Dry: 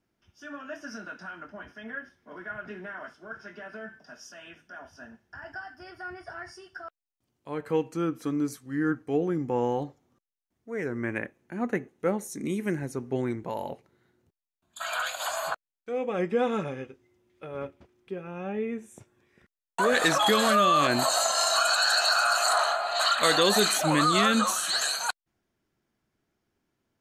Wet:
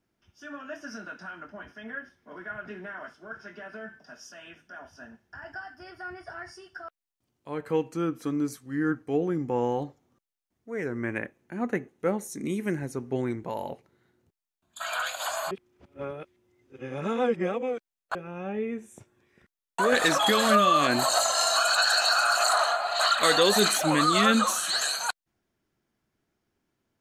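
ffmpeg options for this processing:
ffmpeg -i in.wav -filter_complex "[0:a]asettb=1/sr,asplit=3[link_01][link_02][link_03];[link_01]atrim=end=19.924[link_04];[link_02]atrim=start=19.92:end=24.59,asetpts=PTS-STARTPTS,afade=type=in:duration=0.004:curve=qsin,afade=type=out:start_time=4.666:duration=0.004:curve=qsin,aphaser=in_gain=1:out_gain=1:delay=4.3:decay=0.32:speed=1.6:type=sinusoidal[link_05];[link_03]atrim=start=24.586[link_06];[link_04][link_05]acrossfade=duration=0.004:curve1=hsin:curve2=qsin[link_07];[link_07][link_06]acrossfade=duration=0.004:curve1=qsin:curve2=hsin,asplit=3[link_08][link_09][link_10];[link_08]atrim=end=15.512[link_11];[link_09]atrim=start=15.508:end=18.152,asetpts=PTS-STARTPTS,areverse[link_12];[link_10]atrim=start=18.148[link_13];[link_11][link_12]acrossfade=duration=0.004:curve1=hsin:curve2=hsin[link_14];[link_14][link_13]acrossfade=duration=0.004:curve1=hsin:curve2=hsin" out.wav

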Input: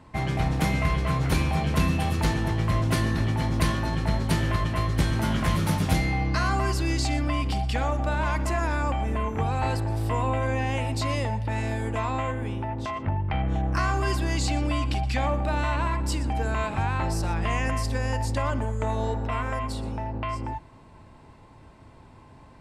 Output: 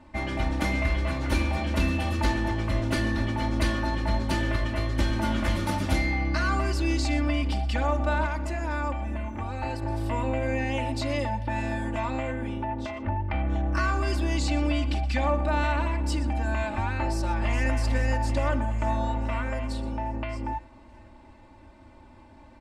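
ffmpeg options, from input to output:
ffmpeg -i in.wav -filter_complex "[0:a]asplit=2[link_01][link_02];[link_02]afade=type=in:start_time=16.98:duration=0.01,afade=type=out:start_time=17.72:duration=0.01,aecho=0:1:420|840|1260|1680|2100|2520|2940|3360|3780:0.354813|0.230629|0.149909|0.0974406|0.0633364|0.0411687|0.0267596|0.0173938|0.0113059[link_03];[link_01][link_03]amix=inputs=2:normalize=0,asplit=3[link_04][link_05][link_06];[link_04]atrim=end=8.262[link_07];[link_05]atrim=start=8.258:end=9.822,asetpts=PTS-STARTPTS,volume=-4dB[link_08];[link_06]atrim=start=9.818[link_09];[link_07][link_08]acrossfade=duration=0.004:curve1=hsin:curve2=hsin[link_10];[link_10][link_09]acrossfade=duration=0.004:curve1=hsin:curve2=hsin,highshelf=frequency=9100:gain=-10.5,aecho=1:1:3.4:0.91,volume=-3dB" out.wav

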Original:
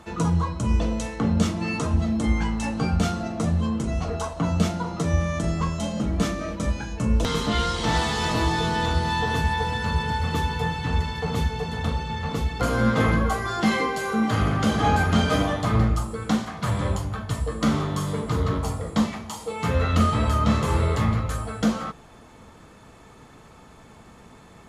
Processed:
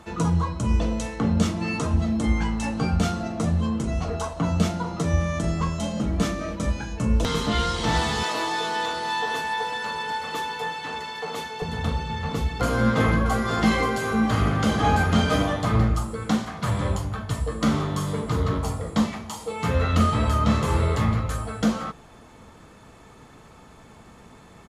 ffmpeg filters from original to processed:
ffmpeg -i in.wav -filter_complex "[0:a]asettb=1/sr,asplit=3[link_01][link_02][link_03];[link_01]atrim=end=8.234[link_04];[link_02]atrim=start=8.23:end=11.62,asetpts=PTS-STARTPTS,afade=type=in:duration=0.004:curve=qsin,afade=type=out:start_time=3.386:duration=0.004:curve=qsin,highpass=430[link_05];[link_03]atrim=start=11.616[link_06];[link_04][link_05]acrossfade=duration=0.004:curve1=hsin:curve2=qsin[link_07];[link_07][link_06]acrossfade=duration=0.004:curve1=qsin:curve2=hsin,asplit=2[link_08][link_09];[link_09]afade=type=in:start_time=12.72:duration=0.01,afade=type=out:start_time=13.44:duration=0.01,aecho=0:1:530|1060|1590|2120|2650|3180|3710|4240:0.421697|0.253018|0.151811|0.0910864|0.0546519|0.0327911|0.0196747|0.0118048[link_10];[link_08][link_10]amix=inputs=2:normalize=0" out.wav

